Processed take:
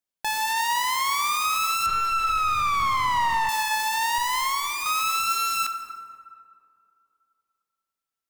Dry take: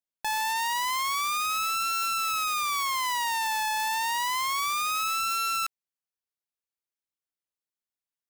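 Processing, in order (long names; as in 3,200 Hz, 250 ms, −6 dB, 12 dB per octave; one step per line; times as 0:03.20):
0:04.18–0:04.86: lower of the sound and its delayed copy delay 2.9 ms
tape delay 245 ms, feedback 66%, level −16 dB, low-pass 1,700 Hz
dense smooth reverb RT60 2.2 s, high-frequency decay 0.45×, DRR 7 dB
0:01.86–0:03.49: mid-hump overdrive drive 17 dB, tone 1,400 Hz, clips at −17.5 dBFS
level +3 dB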